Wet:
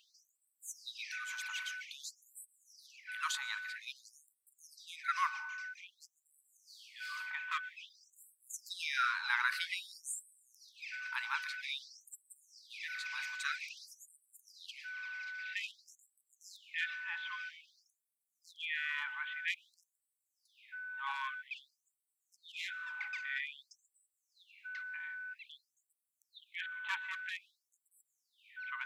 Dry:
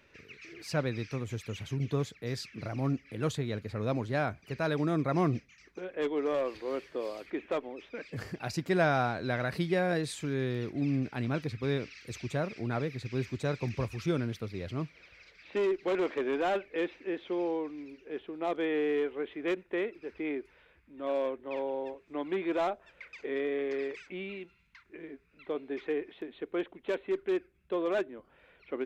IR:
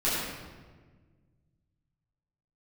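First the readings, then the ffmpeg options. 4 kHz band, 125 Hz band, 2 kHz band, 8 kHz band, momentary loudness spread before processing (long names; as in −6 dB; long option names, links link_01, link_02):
+1.5 dB, below −40 dB, +2.5 dB, +3.0 dB, 12 LU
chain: -filter_complex "[0:a]aeval=exprs='val(0)+0.00501*sin(2*PI*1500*n/s)':channel_layout=same,asplit=2[link_01][link_02];[1:a]atrim=start_sample=2205,afade=type=out:start_time=0.44:duration=0.01,atrim=end_sample=19845,adelay=110[link_03];[link_02][link_03]afir=irnorm=-1:irlink=0,volume=-29dB[link_04];[link_01][link_04]amix=inputs=2:normalize=0,afftfilt=real='re*gte(b*sr/1024,810*pow(7800/810,0.5+0.5*sin(2*PI*0.51*pts/sr)))':imag='im*gte(b*sr/1024,810*pow(7800/810,0.5+0.5*sin(2*PI*0.51*pts/sr)))':win_size=1024:overlap=0.75,volume=4.5dB"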